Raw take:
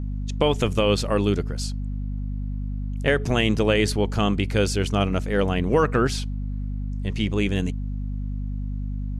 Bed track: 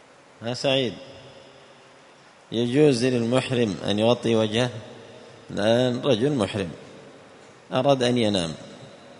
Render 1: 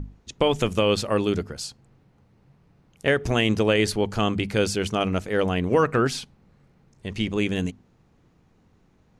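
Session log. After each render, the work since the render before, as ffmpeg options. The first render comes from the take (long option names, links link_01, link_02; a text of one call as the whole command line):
ffmpeg -i in.wav -af "bandreject=frequency=50:width_type=h:width=6,bandreject=frequency=100:width_type=h:width=6,bandreject=frequency=150:width_type=h:width=6,bandreject=frequency=200:width_type=h:width=6,bandreject=frequency=250:width_type=h:width=6" out.wav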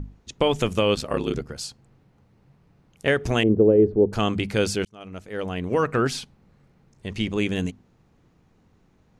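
ffmpeg -i in.wav -filter_complex "[0:a]asettb=1/sr,asplit=3[link_01][link_02][link_03];[link_01]atrim=end=0.944[link_04];[link_02]atrim=start=0.94:end=1.49,asetpts=PTS-STARTPTS,afade=type=in:duration=0.004:curve=qsin,afade=type=out:start_time=0.546:duration=0.004:curve=qsin,aeval=exprs='val(0)*sin(2*PI*36*n/s)':channel_layout=same[link_05];[link_03]atrim=start=1.486[link_06];[link_04][link_05]acrossfade=duration=0.004:curve1=hsin:curve2=qsin[link_07];[link_07][link_06]acrossfade=duration=0.004:curve1=qsin:curve2=hsin,asettb=1/sr,asplit=3[link_08][link_09][link_10];[link_08]atrim=end=3.434[link_11];[link_09]atrim=start=3.43:end=4.13,asetpts=PTS-STARTPTS,afade=type=in:duration=0.004:curve=qsin,afade=type=out:start_time=0.696:duration=0.004:curve=qsin,lowpass=frequency=410:width_type=q:width=2.5[link_12];[link_10]atrim=start=4.126[link_13];[link_11][link_12]acrossfade=duration=0.004:curve1=hsin:curve2=qsin[link_14];[link_14][link_13]acrossfade=duration=0.004:curve1=qsin:curve2=hsin,asplit=2[link_15][link_16];[link_15]atrim=end=4.85,asetpts=PTS-STARTPTS,afade=type=out:start_time=4.846:duration=0.004:curve=hsin[link_17];[link_16]atrim=start=4.85,asetpts=PTS-STARTPTS,afade=type=in:duration=1.25[link_18];[link_17][link_18]concat=n=2:v=0:a=1" out.wav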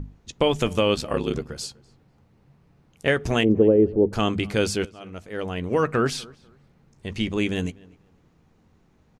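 ffmpeg -i in.wav -filter_complex "[0:a]asplit=2[link_01][link_02];[link_02]adelay=13,volume=-14dB[link_03];[link_01][link_03]amix=inputs=2:normalize=0,asplit=2[link_04][link_05];[link_05]adelay=247,lowpass=frequency=2500:poles=1,volume=-23.5dB,asplit=2[link_06][link_07];[link_07]adelay=247,lowpass=frequency=2500:poles=1,volume=0.25[link_08];[link_04][link_06][link_08]amix=inputs=3:normalize=0" out.wav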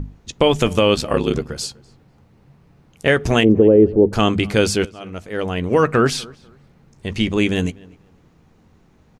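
ffmpeg -i in.wav -af "volume=6.5dB,alimiter=limit=-3dB:level=0:latency=1" out.wav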